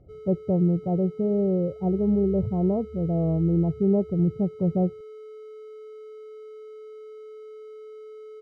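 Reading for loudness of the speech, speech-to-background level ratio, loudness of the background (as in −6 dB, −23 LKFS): −24.5 LKFS, 18.5 dB, −43.0 LKFS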